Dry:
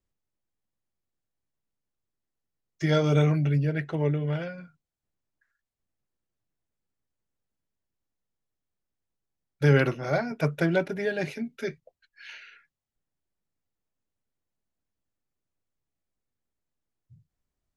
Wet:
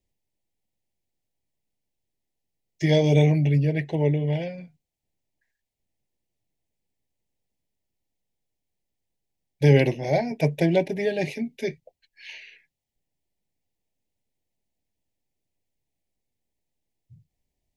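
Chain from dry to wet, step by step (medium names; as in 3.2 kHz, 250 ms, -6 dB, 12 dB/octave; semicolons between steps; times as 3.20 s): Chebyshev band-stop 850–2000 Hz, order 2; trim +4.5 dB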